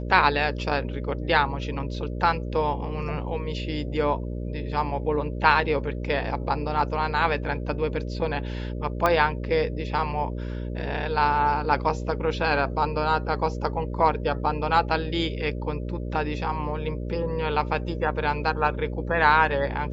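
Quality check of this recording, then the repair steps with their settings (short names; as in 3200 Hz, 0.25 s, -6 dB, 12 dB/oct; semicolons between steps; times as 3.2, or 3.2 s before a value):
buzz 60 Hz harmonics 10 -31 dBFS
9.06 pop -9 dBFS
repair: de-click; de-hum 60 Hz, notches 10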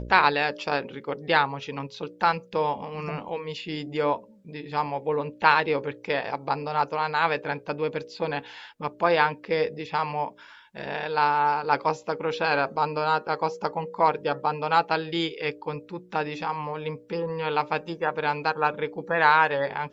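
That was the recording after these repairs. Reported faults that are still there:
none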